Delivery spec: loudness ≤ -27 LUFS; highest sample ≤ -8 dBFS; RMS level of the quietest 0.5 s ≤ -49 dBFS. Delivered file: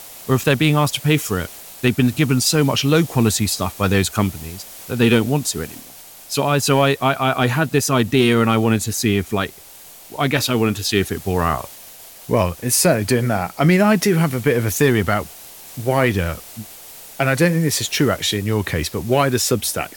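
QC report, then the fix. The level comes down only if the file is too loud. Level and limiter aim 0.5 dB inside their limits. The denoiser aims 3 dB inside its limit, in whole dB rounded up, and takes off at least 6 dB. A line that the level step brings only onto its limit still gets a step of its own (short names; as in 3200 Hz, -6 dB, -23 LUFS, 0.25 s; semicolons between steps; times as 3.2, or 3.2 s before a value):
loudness -18.0 LUFS: fail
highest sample -3.5 dBFS: fail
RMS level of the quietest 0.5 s -42 dBFS: fail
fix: gain -9.5 dB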